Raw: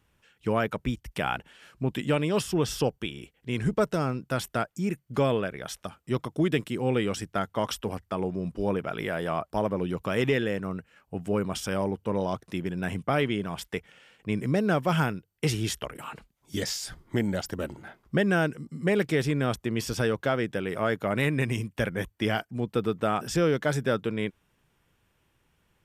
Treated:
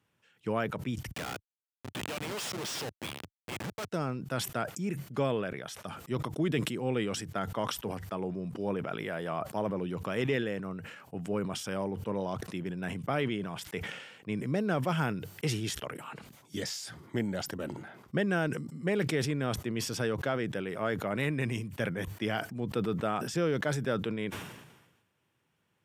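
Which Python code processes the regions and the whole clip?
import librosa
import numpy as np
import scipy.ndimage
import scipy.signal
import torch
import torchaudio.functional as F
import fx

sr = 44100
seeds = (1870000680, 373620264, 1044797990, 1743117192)

y = fx.chain(x, sr, fx.weighting(curve='ITU-R 468'),
    fx.schmitt(flips_db=-31.5), at=(1.11, 3.92))
y = scipy.signal.sosfilt(scipy.signal.butter(4, 100.0, 'highpass', fs=sr, output='sos'), y)
y = fx.high_shelf(y, sr, hz=11000.0, db=-4.5)
y = fx.sustainer(y, sr, db_per_s=52.0)
y = F.gain(torch.from_numpy(y), -5.5).numpy()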